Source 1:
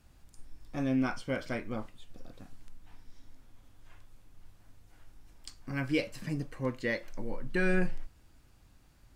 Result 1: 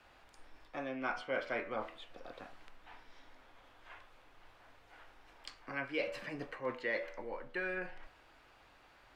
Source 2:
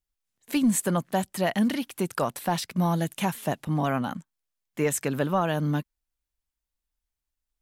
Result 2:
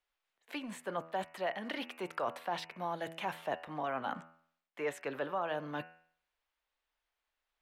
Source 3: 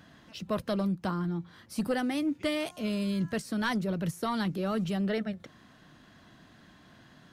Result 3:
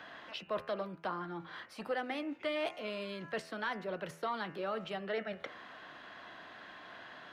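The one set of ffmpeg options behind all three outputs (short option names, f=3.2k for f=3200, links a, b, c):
-filter_complex "[0:a]areverse,acompressor=threshold=-36dB:ratio=10,areverse,bandreject=f=81.91:t=h:w=4,bandreject=f=163.82:t=h:w=4,bandreject=f=245.73:t=h:w=4,bandreject=f=327.64:t=h:w=4,bandreject=f=409.55:t=h:w=4,bandreject=f=491.46:t=h:w=4,bandreject=f=573.37:t=h:w=4,bandreject=f=655.28:t=h:w=4,bandreject=f=737.19:t=h:w=4,bandreject=f=819.1:t=h:w=4,bandreject=f=901.01:t=h:w=4,bandreject=f=982.92:t=h:w=4,bandreject=f=1.06483k:t=h:w=4,bandreject=f=1.14674k:t=h:w=4,bandreject=f=1.22865k:t=h:w=4,bandreject=f=1.31056k:t=h:w=4,bandreject=f=1.39247k:t=h:w=4,bandreject=f=1.47438k:t=h:w=4,bandreject=f=1.55629k:t=h:w=4,bandreject=f=1.6382k:t=h:w=4,bandreject=f=1.72011k:t=h:w=4,bandreject=f=1.80202k:t=h:w=4,bandreject=f=1.88393k:t=h:w=4,bandreject=f=1.96584k:t=h:w=4,bandreject=f=2.04775k:t=h:w=4,bandreject=f=2.12966k:t=h:w=4,bandreject=f=2.21157k:t=h:w=4,bandreject=f=2.29348k:t=h:w=4,bandreject=f=2.37539k:t=h:w=4,bandreject=f=2.4573k:t=h:w=4,bandreject=f=2.53921k:t=h:w=4,bandreject=f=2.62112k:t=h:w=4,bandreject=f=2.70303k:t=h:w=4,bandreject=f=2.78494k:t=h:w=4,bandreject=f=2.86685k:t=h:w=4,bandreject=f=2.94876k:t=h:w=4,acrossover=split=490[a][b];[b]acompressor=threshold=-47dB:ratio=2[c];[a][c]amix=inputs=2:normalize=0,acrossover=split=430 3600:gain=0.0794 1 0.1[d][e][f];[d][e][f]amix=inputs=3:normalize=0,volume=10.5dB"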